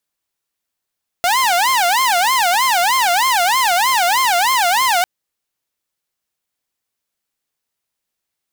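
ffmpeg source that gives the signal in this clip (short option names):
-f lavfi -i "aevalsrc='0.316*(2*mod((875.5*t-184.5/(2*PI*3.2)*sin(2*PI*3.2*t)),1)-1)':d=3.8:s=44100"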